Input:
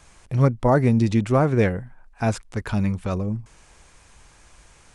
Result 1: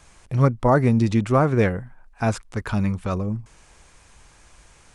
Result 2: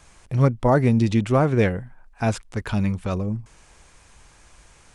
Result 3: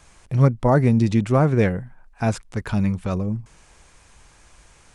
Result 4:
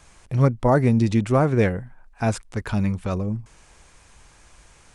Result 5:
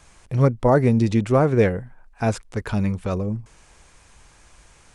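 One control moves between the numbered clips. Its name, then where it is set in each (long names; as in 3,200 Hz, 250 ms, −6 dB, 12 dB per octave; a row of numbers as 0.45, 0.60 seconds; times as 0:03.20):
dynamic equaliser, frequency: 1,200, 3,100, 160, 8,900, 460 Hertz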